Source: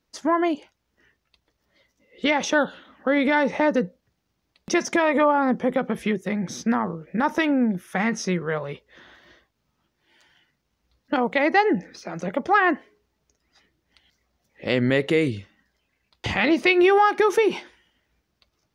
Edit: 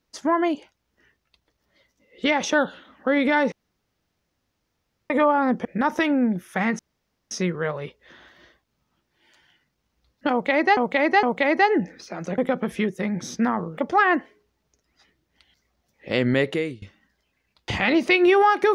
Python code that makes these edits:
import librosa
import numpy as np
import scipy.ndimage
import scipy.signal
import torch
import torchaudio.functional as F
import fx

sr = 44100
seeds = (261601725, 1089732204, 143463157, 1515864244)

y = fx.edit(x, sr, fx.room_tone_fill(start_s=3.52, length_s=1.58),
    fx.move(start_s=5.65, length_s=1.39, to_s=12.33),
    fx.insert_room_tone(at_s=8.18, length_s=0.52),
    fx.repeat(start_s=11.18, length_s=0.46, count=3),
    fx.fade_out_to(start_s=14.96, length_s=0.42, floor_db=-24.0), tone=tone)